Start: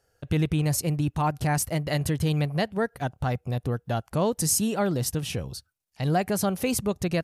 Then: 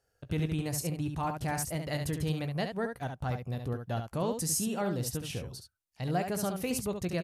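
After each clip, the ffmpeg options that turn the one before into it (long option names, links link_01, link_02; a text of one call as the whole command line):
ffmpeg -i in.wav -af "aecho=1:1:17|70:0.224|0.473,volume=-7.5dB" out.wav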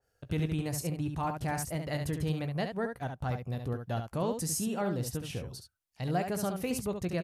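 ffmpeg -i in.wav -af "adynamicequalizer=threshold=0.00316:dfrequency=2600:dqfactor=0.7:tfrequency=2600:tqfactor=0.7:attack=5:release=100:ratio=0.375:range=2:mode=cutabove:tftype=highshelf" out.wav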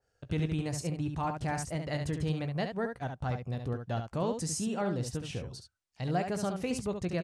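ffmpeg -i in.wav -af "lowpass=frequency=8700:width=0.5412,lowpass=frequency=8700:width=1.3066" out.wav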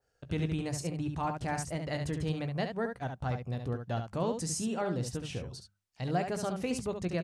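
ffmpeg -i in.wav -af "bandreject=frequency=50:width_type=h:width=6,bandreject=frequency=100:width_type=h:width=6,bandreject=frequency=150:width_type=h:width=6,bandreject=frequency=200:width_type=h:width=6" out.wav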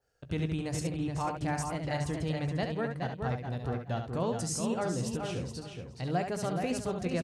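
ffmpeg -i in.wav -filter_complex "[0:a]asplit=2[link_01][link_02];[link_02]adelay=422,lowpass=frequency=4900:poles=1,volume=-5dB,asplit=2[link_03][link_04];[link_04]adelay=422,lowpass=frequency=4900:poles=1,volume=0.23,asplit=2[link_05][link_06];[link_06]adelay=422,lowpass=frequency=4900:poles=1,volume=0.23[link_07];[link_01][link_03][link_05][link_07]amix=inputs=4:normalize=0" out.wav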